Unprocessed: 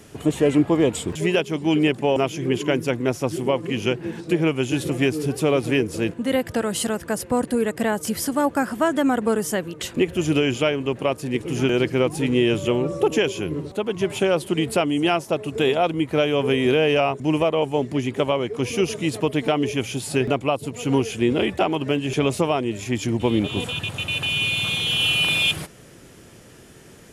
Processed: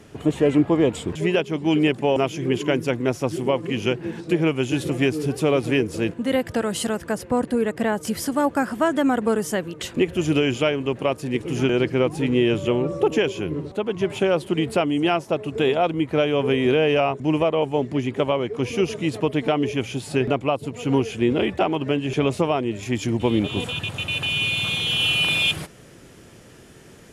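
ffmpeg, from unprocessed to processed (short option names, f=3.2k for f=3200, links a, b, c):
-af "asetnsamples=n=441:p=0,asendcmd='1.66 lowpass f 7700;7.12 lowpass f 3700;8.05 lowpass f 7400;11.67 lowpass f 3700;22.83 lowpass f 8600',lowpass=f=3.6k:p=1"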